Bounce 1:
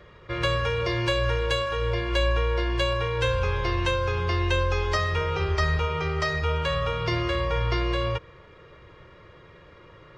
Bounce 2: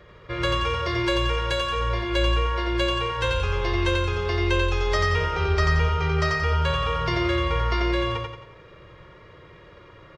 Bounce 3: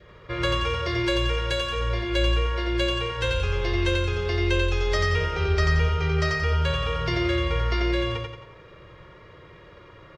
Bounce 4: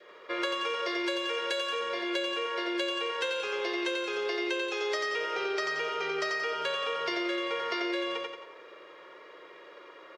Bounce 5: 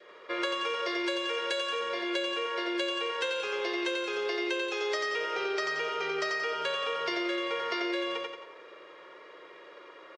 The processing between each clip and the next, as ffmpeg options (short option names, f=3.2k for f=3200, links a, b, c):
-af "aecho=1:1:89|178|267|356|445|534:0.708|0.304|0.131|0.0563|0.0242|0.0104"
-af "adynamicequalizer=threshold=0.00794:dfrequency=1000:dqfactor=1.8:tfrequency=1000:tqfactor=1.8:attack=5:release=100:ratio=0.375:range=3.5:mode=cutabove:tftype=bell"
-af "highpass=f=340:w=0.5412,highpass=f=340:w=1.3066,acompressor=threshold=-28dB:ratio=6"
-af "aresample=22050,aresample=44100"